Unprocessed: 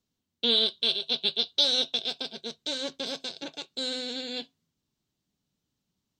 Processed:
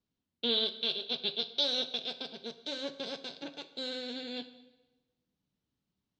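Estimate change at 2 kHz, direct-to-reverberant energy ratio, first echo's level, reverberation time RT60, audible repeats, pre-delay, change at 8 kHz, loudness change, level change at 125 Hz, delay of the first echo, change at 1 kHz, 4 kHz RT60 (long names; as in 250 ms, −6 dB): −4.5 dB, 11.0 dB, no echo audible, 1.1 s, no echo audible, 7 ms, −12.0 dB, −6.5 dB, can't be measured, no echo audible, −4.0 dB, 0.95 s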